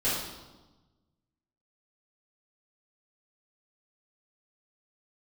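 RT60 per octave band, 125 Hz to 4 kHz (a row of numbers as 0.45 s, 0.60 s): 1.8 s, 1.5 s, 1.2 s, 1.1 s, 0.85 s, 0.95 s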